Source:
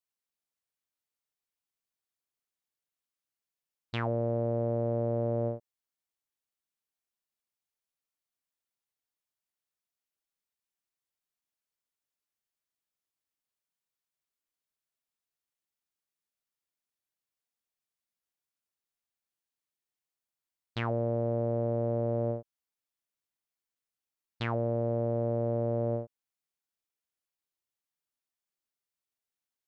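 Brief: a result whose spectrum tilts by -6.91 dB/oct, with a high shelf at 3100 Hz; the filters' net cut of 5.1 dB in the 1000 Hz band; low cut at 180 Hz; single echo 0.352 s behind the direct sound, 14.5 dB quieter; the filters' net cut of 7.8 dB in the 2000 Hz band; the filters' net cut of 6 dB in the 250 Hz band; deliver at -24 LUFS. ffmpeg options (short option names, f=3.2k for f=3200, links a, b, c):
-af "highpass=180,equalizer=f=250:t=o:g=-6,equalizer=f=1k:t=o:g=-5.5,equalizer=f=2k:t=o:g=-6.5,highshelf=f=3.1k:g=-5,aecho=1:1:352:0.188,volume=11dB"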